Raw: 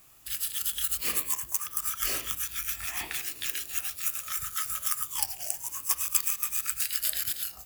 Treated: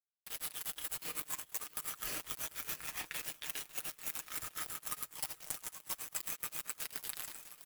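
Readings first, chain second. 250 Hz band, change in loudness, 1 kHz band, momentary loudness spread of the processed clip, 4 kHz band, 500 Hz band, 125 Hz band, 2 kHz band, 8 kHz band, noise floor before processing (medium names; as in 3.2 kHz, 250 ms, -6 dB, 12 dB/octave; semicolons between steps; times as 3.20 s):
-4.5 dB, -11.5 dB, -8.0 dB, 3 LU, -10.0 dB, -4.5 dB, -7.5 dB, -8.0 dB, -11.5 dB, -48 dBFS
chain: fade out at the end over 1.29 s; flange 0.4 Hz, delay 6.2 ms, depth 4.6 ms, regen +81%; crossover distortion -40 dBFS; shuffle delay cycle 1085 ms, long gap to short 1.5:1, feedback 34%, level -24 dB; in parallel at -10.5 dB: sample-rate reducer 9.4 kHz, jitter 0%; on the sum: comb 6.5 ms, depth 46%; reverse; compression 8:1, threshold -47 dBFS, peak gain reduction 23 dB; reverse; trim +10 dB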